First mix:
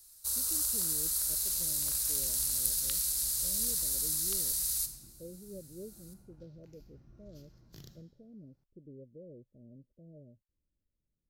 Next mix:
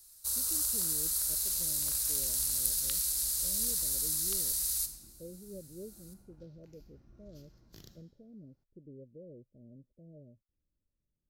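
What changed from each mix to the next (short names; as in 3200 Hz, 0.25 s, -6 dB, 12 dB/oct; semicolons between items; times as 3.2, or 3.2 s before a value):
second sound: add bell 140 Hz -9.5 dB 0.37 oct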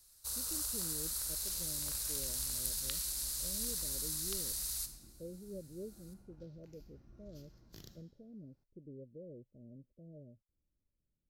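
first sound: add high shelf 5800 Hz -9 dB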